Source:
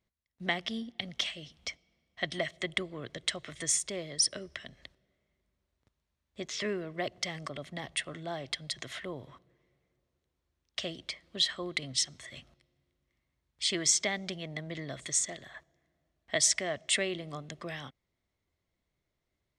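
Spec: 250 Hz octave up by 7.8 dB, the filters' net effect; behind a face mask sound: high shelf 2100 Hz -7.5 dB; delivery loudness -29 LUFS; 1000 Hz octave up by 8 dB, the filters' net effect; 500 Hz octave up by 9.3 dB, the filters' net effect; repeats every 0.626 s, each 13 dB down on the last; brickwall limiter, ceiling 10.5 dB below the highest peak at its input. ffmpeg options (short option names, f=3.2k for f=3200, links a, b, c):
-af "equalizer=f=250:t=o:g=8,equalizer=f=500:t=o:g=8,equalizer=f=1k:t=o:g=8.5,alimiter=limit=-19.5dB:level=0:latency=1,highshelf=f=2.1k:g=-7.5,aecho=1:1:626|1252|1878:0.224|0.0493|0.0108,volume=5dB"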